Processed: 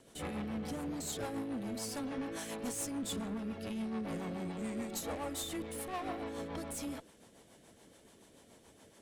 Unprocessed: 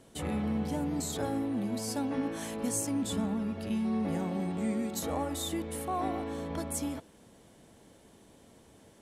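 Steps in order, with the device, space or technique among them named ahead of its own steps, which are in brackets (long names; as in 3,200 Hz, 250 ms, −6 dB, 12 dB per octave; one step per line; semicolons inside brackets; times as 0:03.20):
low-shelf EQ 370 Hz −8 dB
overdriven rotary cabinet (tube saturation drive 37 dB, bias 0.4; rotating-speaker cabinet horn 7 Hz)
level +4 dB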